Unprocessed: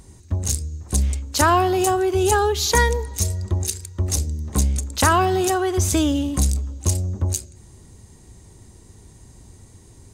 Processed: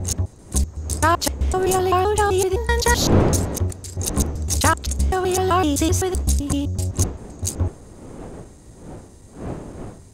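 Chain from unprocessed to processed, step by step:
slices reordered back to front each 128 ms, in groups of 4
wind on the microphone 380 Hz −30 dBFS

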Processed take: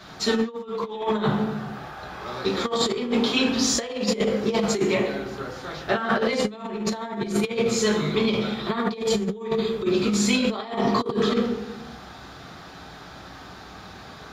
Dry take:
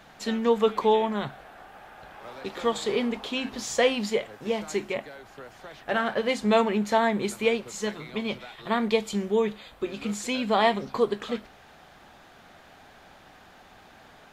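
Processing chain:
convolution reverb RT60 1.1 s, pre-delay 3 ms, DRR −5 dB
compressor whose output falls as the input rises −23 dBFS, ratio −0.5

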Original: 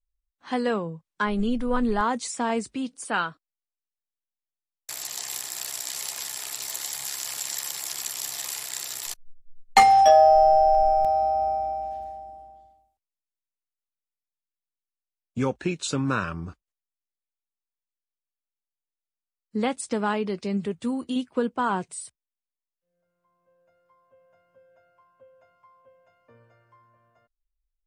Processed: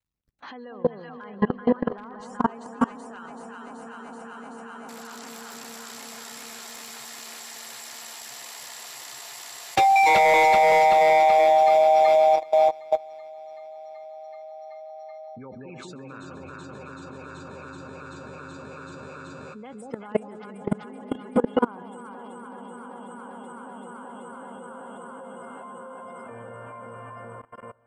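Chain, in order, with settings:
mu-law and A-law mismatch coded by mu
high-pass filter 55 Hz 12 dB per octave
delay that swaps between a low-pass and a high-pass 190 ms, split 850 Hz, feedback 87%, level −2 dB
in parallel at +0.5 dB: downward compressor 6 to 1, threshold −34 dBFS, peak gain reduction 23 dB
on the sum: low-shelf EQ 320 Hz −6 dB
gate on every frequency bin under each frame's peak −25 dB strong
wave folding −12 dBFS
high-shelf EQ 4,200 Hz −11.5 dB
on a send: echo that builds up and dies away 131 ms, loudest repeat 5, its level −16.5 dB
on the sum: brickwall limiter −17 dBFS, peak gain reduction 6.5 dB
output level in coarse steps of 24 dB
level +7.5 dB

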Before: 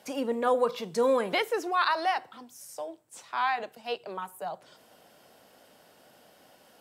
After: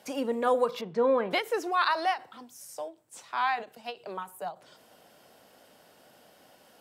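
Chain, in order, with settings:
0:00.81–0:01.31: low-pass filter 2,300 Hz 12 dB per octave
every ending faded ahead of time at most 250 dB per second

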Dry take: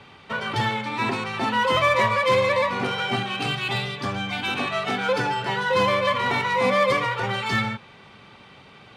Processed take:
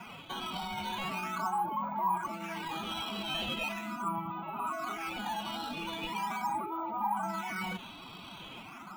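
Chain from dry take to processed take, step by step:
floating-point word with a short mantissa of 2 bits
reversed playback
downward compressor 5 to 1, threshold −31 dBFS, peak gain reduction 14 dB
reversed playback
phase-vocoder pitch shift with formants kept +9 semitones
brickwall limiter −30 dBFS, peak gain reduction 9.5 dB
auto-filter low-pass sine 0.4 Hz 920–4,500 Hz
phaser with its sweep stopped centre 1,800 Hz, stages 6
in parallel at −5 dB: sample-and-hold swept by an LFO 11×, swing 160% 0.4 Hz

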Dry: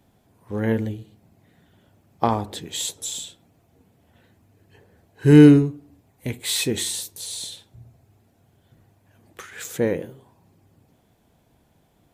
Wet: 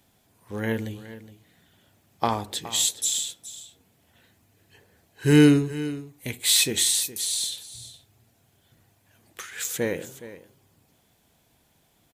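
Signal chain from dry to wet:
tilt shelving filter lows −6 dB, about 1,500 Hz
single-tap delay 417 ms −15 dB
every ending faded ahead of time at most 420 dB per second

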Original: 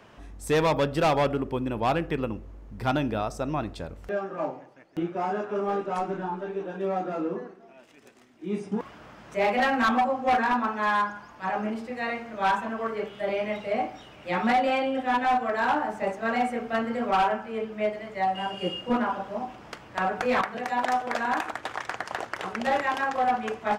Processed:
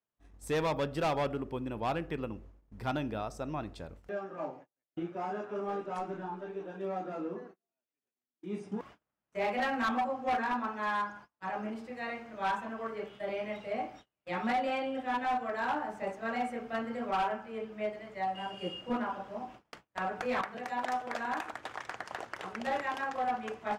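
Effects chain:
noise gate −42 dBFS, range −35 dB
level −8 dB

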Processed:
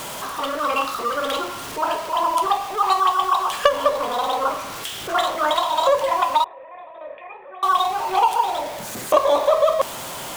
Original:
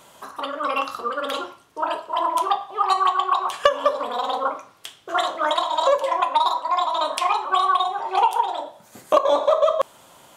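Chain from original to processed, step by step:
converter with a step at zero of −27 dBFS
0:06.44–0:07.63: formant resonators in series e

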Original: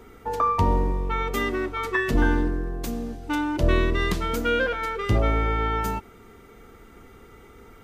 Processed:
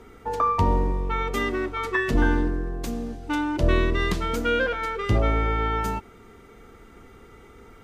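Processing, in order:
Bessel low-pass filter 11,000 Hz, order 2

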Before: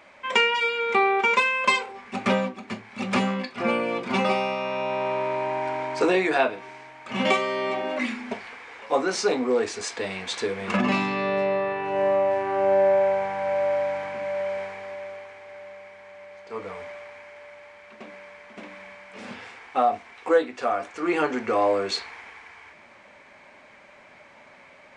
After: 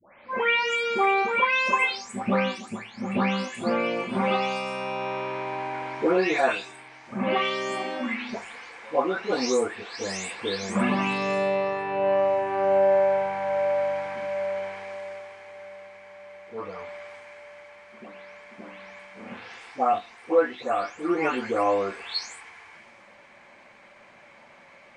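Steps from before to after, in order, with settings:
every frequency bin delayed by itself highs late, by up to 417 ms

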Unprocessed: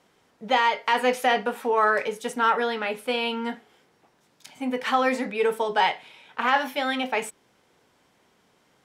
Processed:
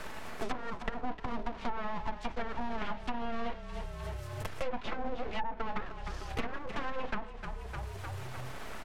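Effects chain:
one scale factor per block 3 bits
treble cut that deepens with the level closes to 410 Hz, closed at −20 dBFS
comb filter 4.6 ms, depth 73%
full-wave rectification
echo with shifted repeats 304 ms, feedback 40%, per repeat −32 Hz, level −14 dB
treble cut that deepens with the level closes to 500 Hz, closed at −13.5 dBFS
multiband upward and downward compressor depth 100%
level −7 dB

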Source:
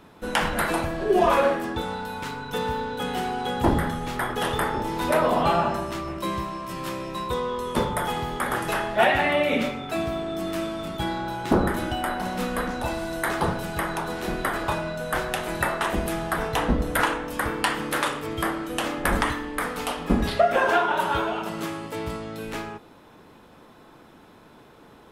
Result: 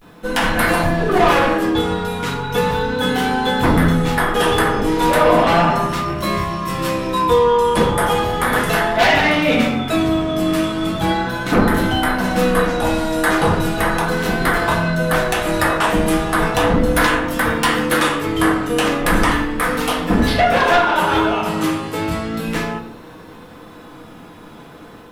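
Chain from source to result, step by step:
automatic gain control gain up to 4.5 dB
sine wavefolder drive 8 dB, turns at −3.5 dBFS
pitch vibrato 0.36 Hz 60 cents
bit-depth reduction 10 bits, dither triangular
convolution reverb RT60 0.55 s, pre-delay 4 ms, DRR 0 dB
level −8.5 dB

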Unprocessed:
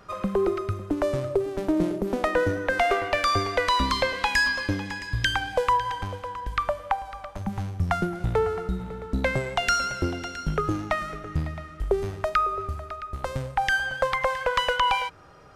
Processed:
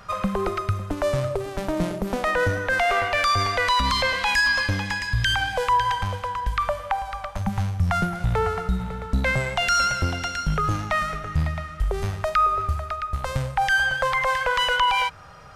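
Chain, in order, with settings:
parametric band 340 Hz −14 dB 0.92 octaves
brickwall limiter −20.5 dBFS, peak gain reduction 9 dB
level +7.5 dB

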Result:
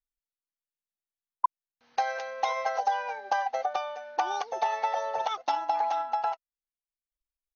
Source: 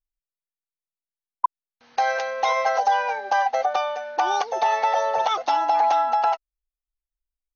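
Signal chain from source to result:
transient designer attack +5 dB, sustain −1 dB, from 0:05.33 sustain −11 dB
level −9 dB

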